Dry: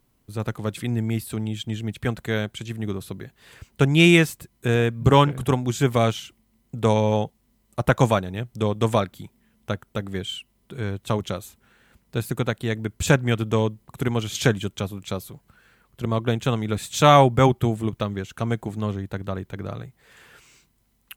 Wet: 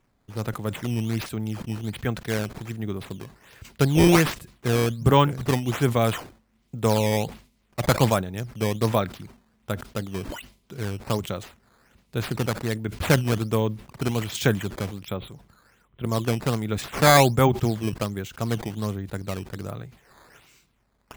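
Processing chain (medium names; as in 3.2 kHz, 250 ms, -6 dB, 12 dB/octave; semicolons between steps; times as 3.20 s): 15.02–16.04 s: steep low-pass 3.7 kHz 96 dB/octave; decimation with a swept rate 9×, swing 160% 1.3 Hz; decay stretcher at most 140 dB/s; trim -2 dB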